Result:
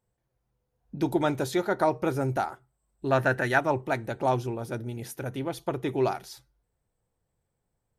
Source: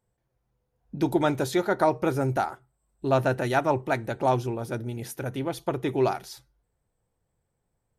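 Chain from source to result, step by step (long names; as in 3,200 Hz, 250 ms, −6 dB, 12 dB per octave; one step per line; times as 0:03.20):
0:03.09–0:03.58: parametric band 1,700 Hz +11.5 dB 0.53 octaves
level −2 dB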